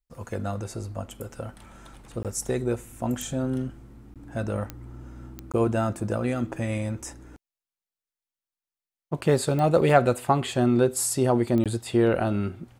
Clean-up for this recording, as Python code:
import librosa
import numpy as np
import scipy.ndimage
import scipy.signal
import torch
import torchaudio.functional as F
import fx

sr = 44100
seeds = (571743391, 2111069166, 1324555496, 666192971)

y = fx.fix_declick_ar(x, sr, threshold=10.0)
y = fx.fix_interpolate(y, sr, at_s=(2.23, 4.14, 5.52, 11.64), length_ms=17.0)